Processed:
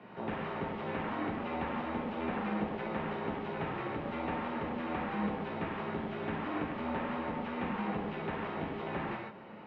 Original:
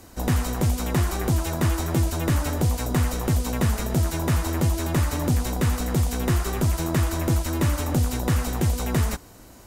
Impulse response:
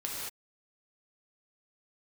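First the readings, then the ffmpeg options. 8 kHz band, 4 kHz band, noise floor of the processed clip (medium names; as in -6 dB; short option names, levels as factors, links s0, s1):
under -40 dB, -15.0 dB, -48 dBFS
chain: -filter_complex "[0:a]equalizer=f=1000:t=o:w=0.37:g=3,acompressor=threshold=0.0251:ratio=1.5,asoftclip=type=tanh:threshold=0.0562[s0];[1:a]atrim=start_sample=2205,afade=t=out:st=0.2:d=0.01,atrim=end_sample=9261[s1];[s0][s1]afir=irnorm=-1:irlink=0,highpass=f=260:t=q:w=0.5412,highpass=f=260:t=q:w=1.307,lowpass=f=3000:t=q:w=0.5176,lowpass=f=3000:t=q:w=0.7071,lowpass=f=3000:t=q:w=1.932,afreqshift=-88"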